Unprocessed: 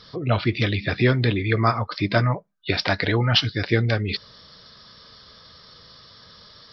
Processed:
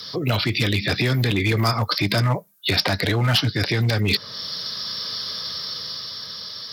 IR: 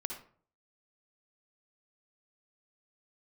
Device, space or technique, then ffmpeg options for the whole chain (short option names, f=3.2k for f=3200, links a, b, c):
FM broadcast chain: -filter_complex "[0:a]highpass=59,dynaudnorm=f=250:g=11:m=11.5dB,acrossover=split=180|1100|2300[a][b][c][d];[a]acompressor=threshold=-22dB:ratio=4[e];[b]acompressor=threshold=-26dB:ratio=4[f];[c]acompressor=threshold=-36dB:ratio=4[g];[d]acompressor=threshold=-36dB:ratio=4[h];[e][f][g][h]amix=inputs=4:normalize=0,aemphasis=mode=production:type=50fm,alimiter=limit=-16dB:level=0:latency=1:release=13,asoftclip=type=hard:threshold=-19dB,highpass=93,lowpass=f=15k:w=0.5412,lowpass=f=15k:w=1.3066,aemphasis=mode=production:type=50fm,volume=5.5dB"